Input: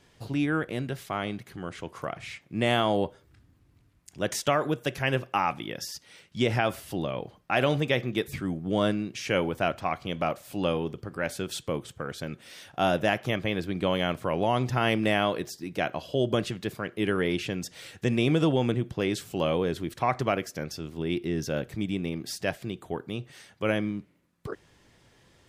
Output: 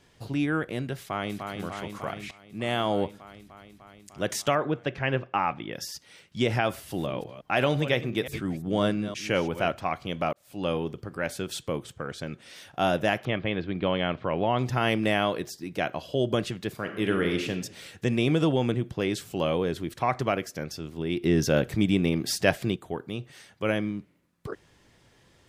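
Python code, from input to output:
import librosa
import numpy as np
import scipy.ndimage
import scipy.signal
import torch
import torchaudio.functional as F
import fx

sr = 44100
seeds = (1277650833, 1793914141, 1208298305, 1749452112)

y = fx.echo_throw(x, sr, start_s=0.99, length_s=0.55, ms=300, feedback_pct=80, wet_db=-5.0)
y = fx.lowpass(y, sr, hz=2900.0, slope=12, at=(4.55, 5.73))
y = fx.reverse_delay(y, sr, ms=173, wet_db=-12.0, at=(6.72, 9.71))
y = fx.lowpass(y, sr, hz=10000.0, slope=12, at=(11.94, 12.56))
y = fx.lowpass(y, sr, hz=3800.0, slope=24, at=(13.25, 14.59))
y = fx.reverb_throw(y, sr, start_s=16.74, length_s=0.76, rt60_s=0.82, drr_db=5.0)
y = fx.edit(y, sr, fx.fade_in_from(start_s=2.31, length_s=0.7, floor_db=-17.0),
    fx.fade_in_span(start_s=10.33, length_s=0.41),
    fx.clip_gain(start_s=21.23, length_s=1.53, db=7.0), tone=tone)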